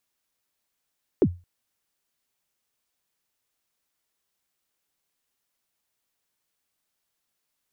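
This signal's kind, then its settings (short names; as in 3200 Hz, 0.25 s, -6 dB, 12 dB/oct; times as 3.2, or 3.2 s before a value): kick drum length 0.22 s, from 460 Hz, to 88 Hz, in 60 ms, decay 0.28 s, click off, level -11 dB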